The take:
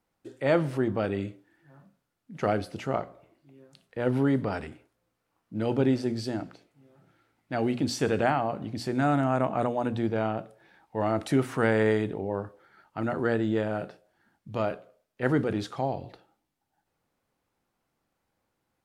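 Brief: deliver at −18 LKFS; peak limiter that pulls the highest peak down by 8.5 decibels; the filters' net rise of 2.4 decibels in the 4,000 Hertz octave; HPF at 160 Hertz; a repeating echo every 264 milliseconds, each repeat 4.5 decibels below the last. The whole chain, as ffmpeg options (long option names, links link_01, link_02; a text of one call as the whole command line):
ffmpeg -i in.wav -af "highpass=160,equalizer=frequency=4000:width_type=o:gain=3,alimiter=limit=-18.5dB:level=0:latency=1,aecho=1:1:264|528|792|1056|1320|1584|1848|2112|2376:0.596|0.357|0.214|0.129|0.0772|0.0463|0.0278|0.0167|0.01,volume=12dB" out.wav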